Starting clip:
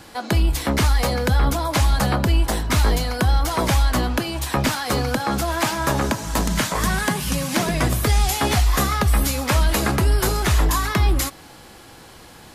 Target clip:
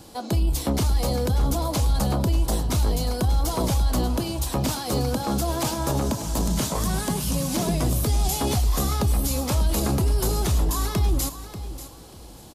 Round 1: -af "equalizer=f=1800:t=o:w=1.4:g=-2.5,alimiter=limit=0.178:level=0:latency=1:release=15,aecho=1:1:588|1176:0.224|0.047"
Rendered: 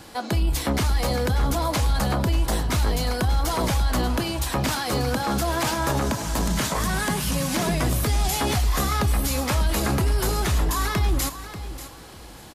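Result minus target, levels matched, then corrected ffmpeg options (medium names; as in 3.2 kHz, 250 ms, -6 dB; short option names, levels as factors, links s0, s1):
2 kHz band +8.5 dB
-af "equalizer=f=1800:t=o:w=1.4:g=-14,alimiter=limit=0.178:level=0:latency=1:release=15,aecho=1:1:588|1176:0.224|0.047"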